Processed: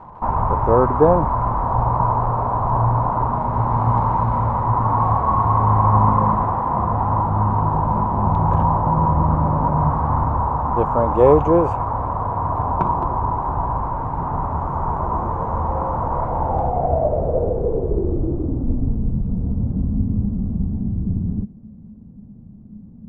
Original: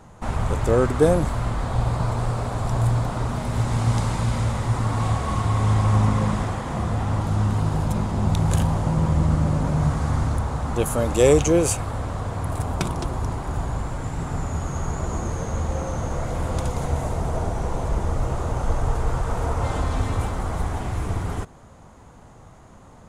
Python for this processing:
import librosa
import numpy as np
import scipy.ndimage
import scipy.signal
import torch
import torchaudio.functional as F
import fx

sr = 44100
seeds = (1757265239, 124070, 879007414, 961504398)

y = fx.dmg_crackle(x, sr, seeds[0], per_s=430.0, level_db=-34.0)
y = fx.filter_sweep_lowpass(y, sr, from_hz=980.0, to_hz=210.0, start_s=16.23, end_s=19.14, q=6.6)
y = y * 10.0 ** (1.0 / 20.0)